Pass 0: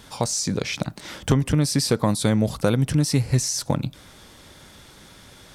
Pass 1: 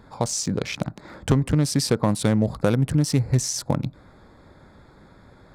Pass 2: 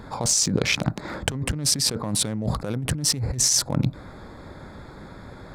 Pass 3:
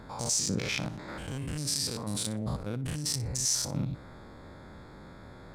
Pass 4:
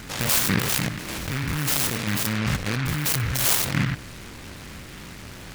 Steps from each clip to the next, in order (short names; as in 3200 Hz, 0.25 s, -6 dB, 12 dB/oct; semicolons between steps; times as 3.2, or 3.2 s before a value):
Wiener smoothing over 15 samples
negative-ratio compressor -28 dBFS, ratio -1; gain +3.5 dB
stepped spectrum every 0.1 s; thinning echo 60 ms, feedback 17%, level -16 dB; gain -5.5 dB
noise-modulated delay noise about 1700 Hz, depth 0.38 ms; gain +8.5 dB